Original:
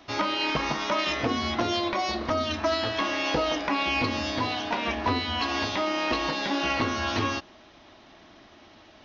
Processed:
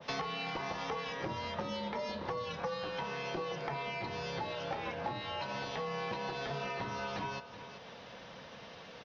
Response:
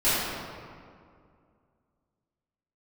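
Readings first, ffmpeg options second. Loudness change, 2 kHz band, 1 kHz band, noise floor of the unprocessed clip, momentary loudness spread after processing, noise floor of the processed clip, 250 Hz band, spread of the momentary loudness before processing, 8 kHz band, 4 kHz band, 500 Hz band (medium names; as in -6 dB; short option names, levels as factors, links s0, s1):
-11.5 dB, -12.0 dB, -10.0 dB, -53 dBFS, 12 LU, -51 dBFS, -14.5 dB, 2 LU, no reading, -13.5 dB, -9.0 dB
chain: -filter_complex "[0:a]highpass=360,acompressor=threshold=0.0126:ratio=8,afreqshift=-140,asplit=2[s0][s1];[s1]aecho=0:1:378:0.224[s2];[s0][s2]amix=inputs=2:normalize=0,adynamicequalizer=threshold=0.00178:dfrequency=1600:dqfactor=0.7:tfrequency=1600:tqfactor=0.7:attack=5:release=100:ratio=0.375:range=3:mode=cutabove:tftype=highshelf,volume=1.5"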